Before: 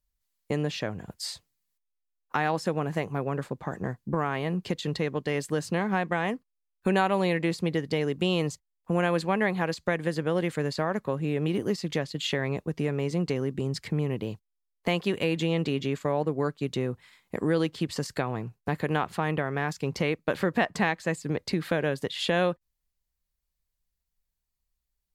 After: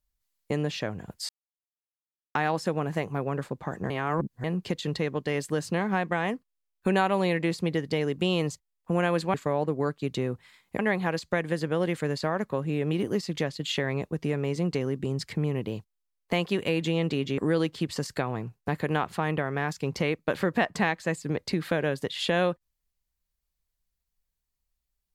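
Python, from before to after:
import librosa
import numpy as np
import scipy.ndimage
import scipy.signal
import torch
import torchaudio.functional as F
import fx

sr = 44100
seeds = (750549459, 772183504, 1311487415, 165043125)

y = fx.edit(x, sr, fx.silence(start_s=1.29, length_s=1.06),
    fx.reverse_span(start_s=3.9, length_s=0.54),
    fx.move(start_s=15.93, length_s=1.45, to_s=9.34), tone=tone)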